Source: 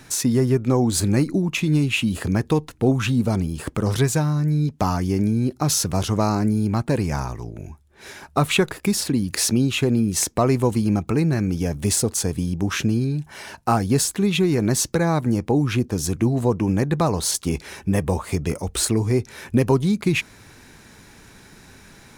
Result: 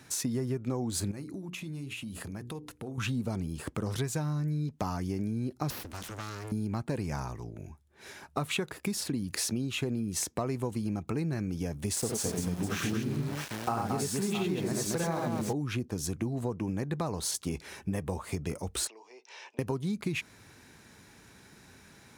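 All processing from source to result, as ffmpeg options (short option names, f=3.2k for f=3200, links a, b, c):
-filter_complex "[0:a]asettb=1/sr,asplit=3[a][b][c];[a]atrim=end=1.114[d];[b]atrim=start=1.11:end=2.98,asetpts=PTS-STARTPTS,afade=t=in:d=0.004:c=qsin,afade=t=out:st=1.866:d=0.004:c=qsin,equalizer=f=11k:t=o:w=0.68:g=5.5,bandreject=f=60:t=h:w=6,bandreject=f=120:t=h:w=6,bandreject=f=180:t=h:w=6,bandreject=f=240:t=h:w=6,bandreject=f=300:t=h:w=6,bandreject=f=360:t=h:w=6,bandreject=f=420:t=h:w=6,bandreject=f=480:t=h:w=6,acompressor=threshold=-29dB:ratio=5:attack=3.2:release=140:knee=1:detection=peak[e];[c]atrim=start=2.976[f];[d][e]acrossfade=d=0.004:c1=hsin:c2=qsin[g];[g][f]acrossfade=d=0.004:c1=qsin:c2=hsin,asettb=1/sr,asplit=3[h][i][j];[h]atrim=end=5.704[k];[i]atrim=start=5.7:end=6.52,asetpts=PTS-STARTPTS,afade=t=in:d=0.004:c=qsin,afade=t=out:st=0.816:d=0.004:c=qsin,equalizer=f=770:t=o:w=1:g=-5.5,aeval=exprs='abs(val(0))':c=same,acrossover=split=310|930[l][m][n];[l]acompressor=threshold=-28dB:ratio=4[o];[m]acompressor=threshold=-42dB:ratio=4[p];[n]acompressor=threshold=-31dB:ratio=4[q];[o][p][q]amix=inputs=3:normalize=0[r];[j]atrim=start=6.516[s];[k][r]acrossfade=d=0.004:c1=hsin:c2=qsin[t];[t][s]acrossfade=d=0.004:c1=qsin:c2=hsin,asettb=1/sr,asplit=3[u][v][w];[u]atrim=end=11.964[x];[v]atrim=start=11.96:end=15.53,asetpts=PTS-STARTPTS,afade=t=in:d=0.004:c=qsin,afade=t=out:st=3.566:d=0.004:c=qsin,equalizer=f=770:t=o:w=2.1:g=4.5,aecho=1:1:61|89|94|103|224|667:0.447|0.668|0.282|0.106|0.596|0.299,atrim=end_sample=157437,aeval=exprs='val(0)*gte(abs(val(0)),0.0501)':c=same[y];[w]atrim=start=15.526[z];[x][y]acrossfade=d=0.004:c1=hsin:c2=qsin[aa];[aa][z]acrossfade=d=0.004:c1=qsin:c2=hsin,asettb=1/sr,asplit=3[ab][ac][ad];[ab]atrim=end=18.874[ae];[ac]atrim=start=18.87:end=19.59,asetpts=PTS-STARTPTS,afade=t=in:d=0.004:c=qsin,afade=t=out:st=0.716:d=0.004:c=qsin,acompressor=threshold=-37dB:ratio=3:attack=3.2:release=140:knee=1:detection=peak,highpass=f=460:w=0.5412,highpass=f=460:w=1.3066,equalizer=f=930:t=q:w=4:g=8,equalizer=f=1.4k:t=q:w=4:g=-6,equalizer=f=2.8k:t=q:w=4:g=9,equalizer=f=5.6k:t=q:w=4:g=6,lowpass=f=6.4k:w=0.5412,lowpass=f=6.4k:w=1.3066[af];[ad]atrim=start=19.586[ag];[ae][af]acrossfade=d=0.004:c1=hsin:c2=qsin[ah];[ah][ag]acrossfade=d=0.004:c1=qsin:c2=hsin,highpass=61,acompressor=threshold=-20dB:ratio=6,volume=-8dB"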